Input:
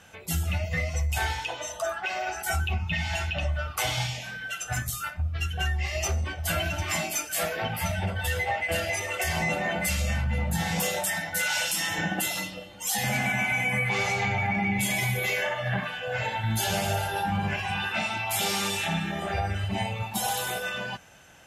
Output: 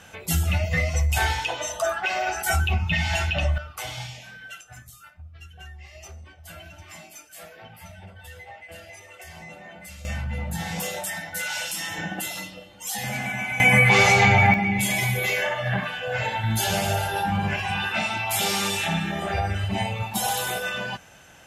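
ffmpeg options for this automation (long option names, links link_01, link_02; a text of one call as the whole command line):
ffmpeg -i in.wav -af "asetnsamples=nb_out_samples=441:pad=0,asendcmd='3.58 volume volume -6dB;4.61 volume volume -15dB;10.05 volume volume -2.5dB;13.6 volume volume 10.5dB;14.54 volume volume 3dB',volume=5dB" out.wav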